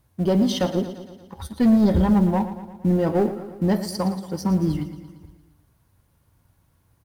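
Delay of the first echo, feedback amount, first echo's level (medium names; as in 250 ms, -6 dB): 115 ms, 59%, -12.5 dB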